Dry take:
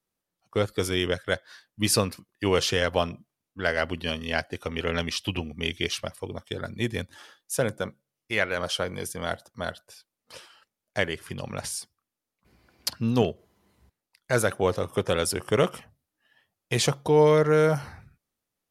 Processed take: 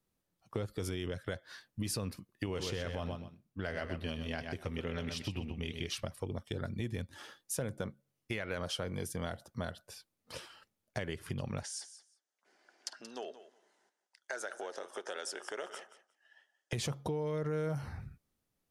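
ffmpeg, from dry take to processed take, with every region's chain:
-filter_complex "[0:a]asettb=1/sr,asplit=3[s0][s1][s2];[s0]atrim=end=2.464[s3];[s1]atrim=start=2.46:end=5.89,asetpts=PTS-STARTPTS,afade=t=in:d=0.004:c=qsin,afade=t=out:st=3.426:d=0.004:c=qsin,flanger=delay=6:depth=7.3:regen=-85:speed=1.5:shape=triangular,aecho=1:1:126|252:0.376|0.0601,atrim=end_sample=151263[s4];[s2]atrim=start=5.886[s5];[s3][s4]acrossfade=d=0.004:c1=hsin:c2=qsin[s6];[s6][s5]acrossfade=d=0.004:c1=qsin:c2=hsin,asettb=1/sr,asplit=3[s7][s8][s9];[s7]atrim=end=11.634[s10];[s8]atrim=start=11.63:end=16.73,asetpts=PTS-STARTPTS,afade=t=in:d=0.004:c=qsin,afade=t=out:st=5.096:d=0.004:c=qsin,acompressor=threshold=0.0251:ratio=3:attack=3.2:release=140:knee=1:detection=peak,highpass=f=450:w=0.5412,highpass=f=450:w=1.3066,equalizer=f=490:t=q:w=4:g=-8,equalizer=f=1100:t=q:w=4:g=-8,equalizer=f=1600:t=q:w=4:g=5,equalizer=f=2400:t=q:w=4:g=-7,equalizer=f=4100:t=q:w=4:g=-5,equalizer=f=6200:t=q:w=4:g=3,lowpass=f=8700:w=0.5412,lowpass=f=8700:w=1.3066,aecho=1:1:178|356:0.178|0.0285,atrim=end_sample=224910[s11];[s9]atrim=start=16.726[s12];[s10][s11]acrossfade=d=0.004:c1=hsin:c2=qsin[s13];[s13][s12]acrossfade=d=0.004:c1=qsin:c2=hsin,lowshelf=f=320:g=9,alimiter=limit=0.168:level=0:latency=1:release=59,acompressor=threshold=0.0178:ratio=3,volume=0.841"

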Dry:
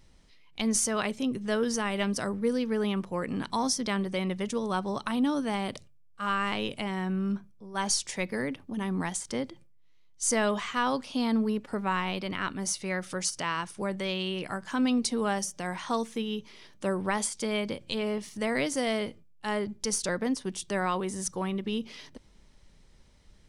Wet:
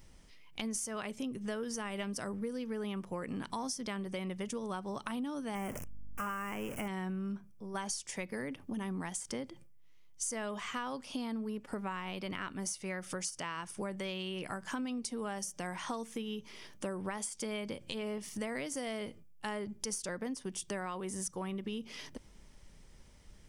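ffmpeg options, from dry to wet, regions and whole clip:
-filter_complex "[0:a]asettb=1/sr,asplit=3[s0][s1][s2];[s0]atrim=end=5.554[s3];[s1]atrim=start=5.55:end=6.88,asetpts=PTS-STARTPTS,afade=t=in:d=0.004:c=qsin,afade=t=out:st=1.326:d=0.004:c=qsin,aeval=exprs='val(0)+0.5*0.0188*sgn(val(0))':c=same,aeval=exprs='val(0)+0.002*(sin(2*PI*50*n/s)+sin(2*PI*2*50*n/s)/2+sin(2*PI*3*50*n/s)/3+sin(2*PI*4*50*n/s)/4+sin(2*PI*5*50*n/s)/5)':c=same,asuperstop=centerf=4000:order=4:qfactor=1.2[s4];[s2]atrim=start=6.876[s5];[s3][s4]acrossfade=d=0.004:c1=hsin:c2=qsin[s6];[s6][s5]acrossfade=d=0.004:c1=qsin:c2=hsin,highshelf=f=9700:g=8,acompressor=threshold=0.0141:ratio=6,equalizer=f=4000:t=o:w=0.24:g=-7,volume=1.12"

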